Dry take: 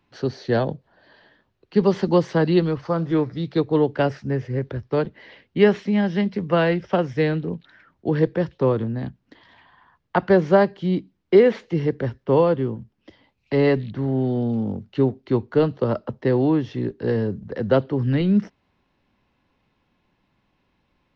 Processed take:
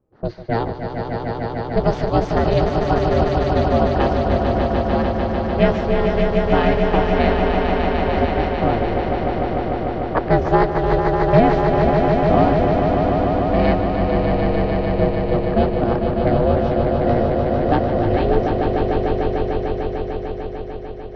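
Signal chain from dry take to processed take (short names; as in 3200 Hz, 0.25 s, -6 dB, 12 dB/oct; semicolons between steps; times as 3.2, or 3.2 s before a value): ring modulator 230 Hz; low-pass opened by the level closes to 580 Hz, open at -18 dBFS; swelling echo 0.149 s, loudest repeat 5, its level -6 dB; gain +2.5 dB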